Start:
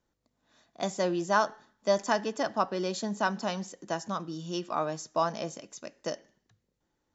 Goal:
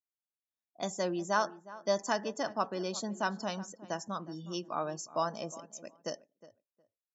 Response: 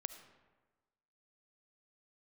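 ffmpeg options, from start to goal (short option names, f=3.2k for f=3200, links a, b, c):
-filter_complex "[0:a]afftdn=nr=36:nf=-46,highshelf=f=6.4k:g=9.5,asplit=2[a][b];[b]adelay=362,lowpass=f=1.8k:p=1,volume=-17dB,asplit=2[c][d];[d]adelay=362,lowpass=f=1.8k:p=1,volume=0.18[e];[c][e]amix=inputs=2:normalize=0[f];[a][f]amix=inputs=2:normalize=0,volume=-4.5dB"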